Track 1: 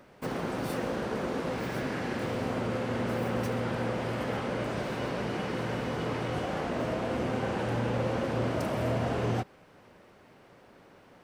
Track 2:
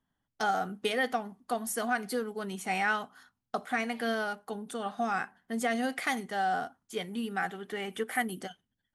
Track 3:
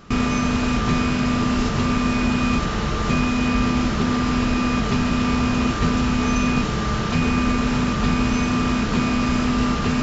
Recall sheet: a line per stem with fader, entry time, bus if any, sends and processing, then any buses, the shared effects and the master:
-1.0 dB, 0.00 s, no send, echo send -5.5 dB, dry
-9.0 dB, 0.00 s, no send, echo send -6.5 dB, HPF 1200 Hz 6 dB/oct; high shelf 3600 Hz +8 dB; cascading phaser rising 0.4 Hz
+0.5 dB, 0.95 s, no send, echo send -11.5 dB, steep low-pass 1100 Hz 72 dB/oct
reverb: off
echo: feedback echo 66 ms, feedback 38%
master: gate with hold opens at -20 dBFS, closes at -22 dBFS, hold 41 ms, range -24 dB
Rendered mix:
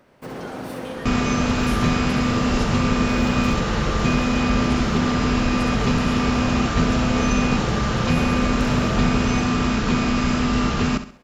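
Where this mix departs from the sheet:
stem 2: missing high shelf 3600 Hz +8 dB; stem 3: missing steep low-pass 1100 Hz 72 dB/oct; master: missing gate with hold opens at -20 dBFS, closes at -22 dBFS, hold 41 ms, range -24 dB

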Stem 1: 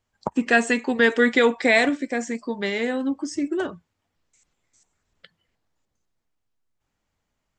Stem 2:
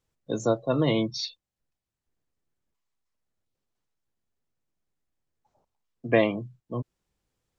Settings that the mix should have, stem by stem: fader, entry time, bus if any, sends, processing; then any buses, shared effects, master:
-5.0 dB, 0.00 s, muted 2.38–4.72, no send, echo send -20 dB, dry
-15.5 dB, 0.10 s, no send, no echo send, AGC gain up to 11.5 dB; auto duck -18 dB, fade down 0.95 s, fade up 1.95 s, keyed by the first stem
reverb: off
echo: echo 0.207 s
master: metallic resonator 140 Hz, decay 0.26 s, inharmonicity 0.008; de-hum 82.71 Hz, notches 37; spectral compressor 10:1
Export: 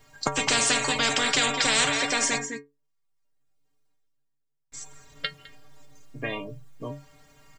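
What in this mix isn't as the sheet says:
stem 1 -5.0 dB -> +6.5 dB; master: missing de-hum 82.71 Hz, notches 37

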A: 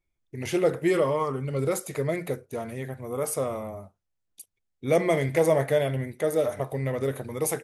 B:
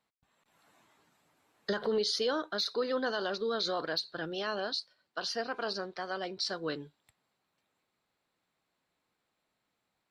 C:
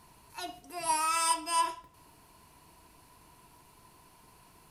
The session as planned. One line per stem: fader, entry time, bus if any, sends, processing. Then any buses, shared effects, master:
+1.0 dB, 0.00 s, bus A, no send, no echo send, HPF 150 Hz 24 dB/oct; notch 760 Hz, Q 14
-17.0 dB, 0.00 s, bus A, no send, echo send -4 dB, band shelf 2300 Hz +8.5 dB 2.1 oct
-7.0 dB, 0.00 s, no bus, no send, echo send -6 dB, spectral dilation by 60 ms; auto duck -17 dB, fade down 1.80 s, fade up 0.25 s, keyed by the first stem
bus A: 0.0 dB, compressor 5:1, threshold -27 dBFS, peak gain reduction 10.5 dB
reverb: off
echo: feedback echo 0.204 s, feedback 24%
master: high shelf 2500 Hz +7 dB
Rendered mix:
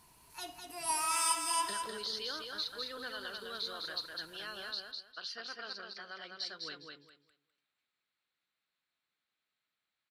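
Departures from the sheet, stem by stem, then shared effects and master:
stem A: muted; stem C: missing spectral dilation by 60 ms

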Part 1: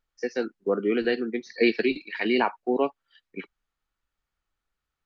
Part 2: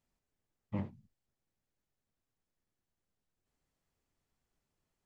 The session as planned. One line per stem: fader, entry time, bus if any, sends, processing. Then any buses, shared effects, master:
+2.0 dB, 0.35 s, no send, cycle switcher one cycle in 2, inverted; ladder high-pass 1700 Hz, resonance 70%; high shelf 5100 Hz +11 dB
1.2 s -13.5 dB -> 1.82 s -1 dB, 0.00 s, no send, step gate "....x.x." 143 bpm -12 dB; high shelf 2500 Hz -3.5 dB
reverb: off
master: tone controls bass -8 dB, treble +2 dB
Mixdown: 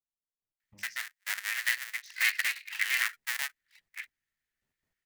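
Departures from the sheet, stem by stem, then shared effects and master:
stem 1: entry 0.35 s -> 0.60 s; master: missing tone controls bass -8 dB, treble +2 dB

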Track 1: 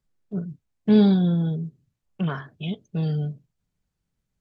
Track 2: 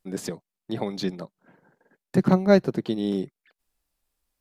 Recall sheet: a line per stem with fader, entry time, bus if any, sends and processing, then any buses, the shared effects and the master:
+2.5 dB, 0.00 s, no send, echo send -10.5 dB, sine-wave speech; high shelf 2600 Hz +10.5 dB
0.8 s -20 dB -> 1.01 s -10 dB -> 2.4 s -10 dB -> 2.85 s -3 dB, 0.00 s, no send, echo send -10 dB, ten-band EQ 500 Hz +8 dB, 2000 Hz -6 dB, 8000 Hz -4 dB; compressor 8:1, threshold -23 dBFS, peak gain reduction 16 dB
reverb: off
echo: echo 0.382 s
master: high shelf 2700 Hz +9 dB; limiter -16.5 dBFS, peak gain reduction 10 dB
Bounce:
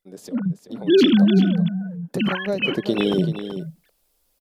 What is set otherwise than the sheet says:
stem 2 -20.0 dB -> -10.5 dB; master: missing limiter -16.5 dBFS, peak gain reduction 10 dB

